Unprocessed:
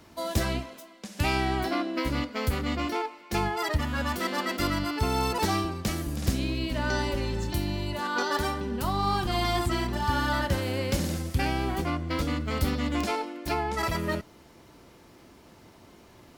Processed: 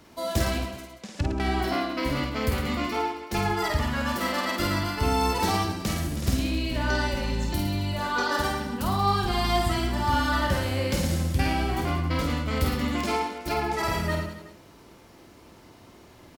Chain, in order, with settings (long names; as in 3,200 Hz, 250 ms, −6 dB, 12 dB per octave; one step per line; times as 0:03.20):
0:00.78–0:01.40: treble cut that deepens with the level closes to 530 Hz, closed at −24 dBFS
reverse bouncing-ball delay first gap 50 ms, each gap 1.2×, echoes 5